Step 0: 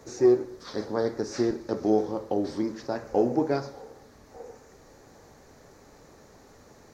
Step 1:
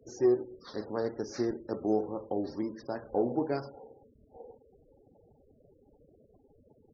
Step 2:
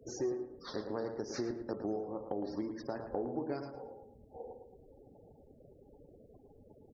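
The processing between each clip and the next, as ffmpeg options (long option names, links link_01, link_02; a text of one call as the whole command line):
ffmpeg -i in.wav -af "afftfilt=real='re*gte(hypot(re,im),0.00794)':imag='im*gte(hypot(re,im),0.00794)':win_size=1024:overlap=0.75,volume=-5.5dB" out.wav
ffmpeg -i in.wav -filter_complex "[0:a]acompressor=threshold=-38dB:ratio=4,asplit=2[link_01][link_02];[link_02]adelay=111,lowpass=frequency=2500:poles=1,volume=-7dB,asplit=2[link_03][link_04];[link_04]adelay=111,lowpass=frequency=2500:poles=1,volume=0.33,asplit=2[link_05][link_06];[link_06]adelay=111,lowpass=frequency=2500:poles=1,volume=0.33,asplit=2[link_07][link_08];[link_08]adelay=111,lowpass=frequency=2500:poles=1,volume=0.33[link_09];[link_01][link_03][link_05][link_07][link_09]amix=inputs=5:normalize=0,volume=2.5dB" out.wav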